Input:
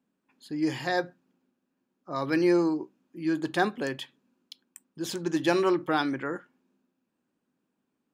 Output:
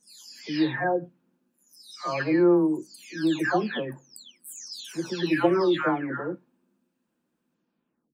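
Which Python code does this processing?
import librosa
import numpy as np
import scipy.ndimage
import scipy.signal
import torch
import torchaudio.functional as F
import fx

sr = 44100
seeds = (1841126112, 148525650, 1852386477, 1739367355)

y = fx.spec_delay(x, sr, highs='early', ms=599)
y = y * librosa.db_to_amplitude(3.5)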